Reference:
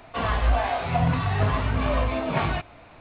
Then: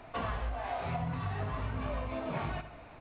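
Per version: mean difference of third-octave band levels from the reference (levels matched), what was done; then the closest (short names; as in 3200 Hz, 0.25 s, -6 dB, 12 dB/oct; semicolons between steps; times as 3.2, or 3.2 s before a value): 2.5 dB: high shelf 3900 Hz -10 dB; compressor 6:1, threshold -30 dBFS, peak gain reduction 13.5 dB; on a send: feedback echo 78 ms, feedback 44%, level -11.5 dB; on the sum: gain -2.5 dB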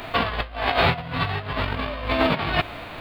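8.0 dB: spectral whitening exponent 0.6; negative-ratio compressor -29 dBFS, ratio -0.5; gain +6 dB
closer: first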